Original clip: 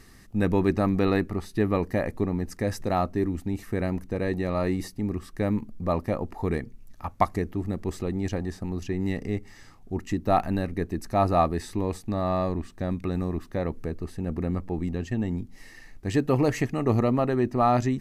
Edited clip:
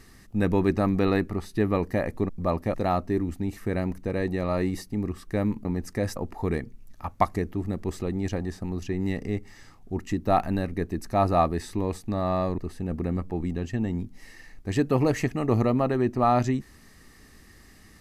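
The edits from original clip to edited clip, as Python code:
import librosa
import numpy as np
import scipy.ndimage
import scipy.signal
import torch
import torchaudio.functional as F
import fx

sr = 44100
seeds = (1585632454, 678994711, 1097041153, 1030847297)

y = fx.edit(x, sr, fx.swap(start_s=2.29, length_s=0.51, other_s=5.71, other_length_s=0.45),
    fx.cut(start_s=12.58, length_s=1.38), tone=tone)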